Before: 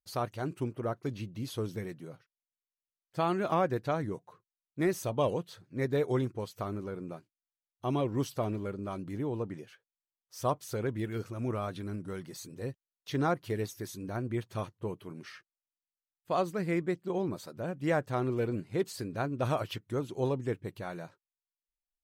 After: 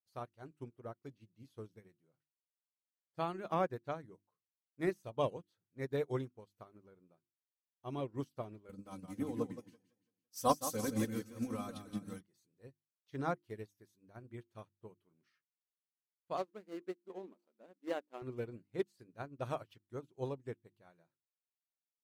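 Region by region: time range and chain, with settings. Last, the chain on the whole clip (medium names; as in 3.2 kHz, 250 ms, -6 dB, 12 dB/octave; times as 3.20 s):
8.69–12.21 s: tone controls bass +8 dB, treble +13 dB + comb 3.9 ms, depth 89% + modulated delay 168 ms, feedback 42%, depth 83 cents, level -6 dB
16.37–18.22 s: median filter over 25 samples + brick-wall FIR high-pass 190 Hz
whole clip: hum notches 50/100/150/200/250/300/350 Hz; upward expansion 2.5:1, over -43 dBFS; trim -1 dB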